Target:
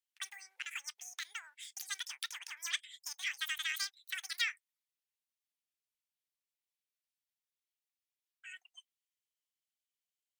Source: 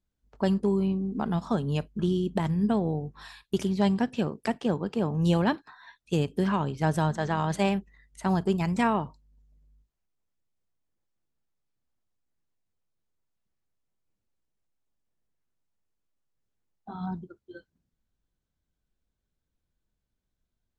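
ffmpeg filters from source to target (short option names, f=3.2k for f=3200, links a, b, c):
-af "highpass=f=1.1k:w=0.5412,highpass=f=1.1k:w=1.3066,asetrate=88200,aresample=44100,volume=-1dB"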